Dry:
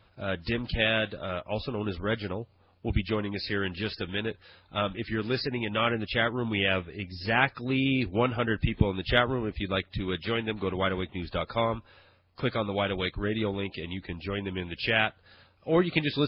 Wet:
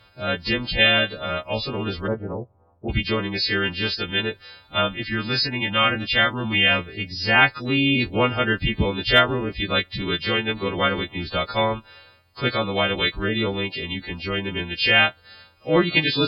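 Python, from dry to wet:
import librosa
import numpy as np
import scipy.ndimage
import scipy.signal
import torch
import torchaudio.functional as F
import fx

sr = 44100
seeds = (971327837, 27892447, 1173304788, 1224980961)

y = fx.freq_snap(x, sr, grid_st=2)
y = fx.lowpass(y, sr, hz=1000.0, slope=24, at=(2.06, 2.88), fade=0.02)
y = fx.peak_eq(y, sr, hz=420.0, db=-12.0, octaves=0.31, at=(4.92, 6.79))
y = y * librosa.db_to_amplitude(5.5)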